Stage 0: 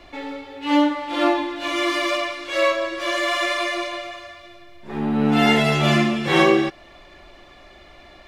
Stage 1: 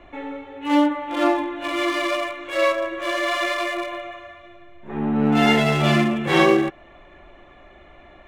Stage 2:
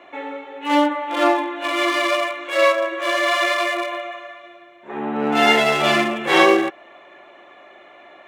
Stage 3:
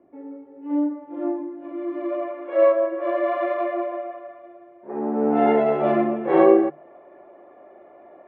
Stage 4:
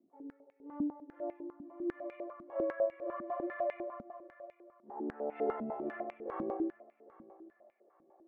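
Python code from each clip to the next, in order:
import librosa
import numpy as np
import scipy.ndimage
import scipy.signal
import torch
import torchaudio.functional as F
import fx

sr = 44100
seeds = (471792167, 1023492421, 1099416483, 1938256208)

y1 = fx.wiener(x, sr, points=9)
y2 = scipy.signal.sosfilt(scipy.signal.butter(2, 400.0, 'highpass', fs=sr, output='sos'), y1)
y2 = y2 * 10.0 ** (4.5 / 20.0)
y3 = fx.hum_notches(y2, sr, base_hz=50, count=6)
y3 = fx.filter_sweep_lowpass(y3, sr, from_hz=250.0, to_hz=570.0, start_s=1.86, end_s=2.4, q=1.1)
y3 = fx.peak_eq(y3, sr, hz=2000.0, db=5.0, octaves=1.3)
y4 = fx.rider(y3, sr, range_db=4, speed_s=2.0)
y4 = fx.echo_feedback(y4, sr, ms=804, feedback_pct=31, wet_db=-20.0)
y4 = fx.filter_held_bandpass(y4, sr, hz=10.0, low_hz=230.0, high_hz=2300.0)
y4 = y4 * 10.0 ** (-7.5 / 20.0)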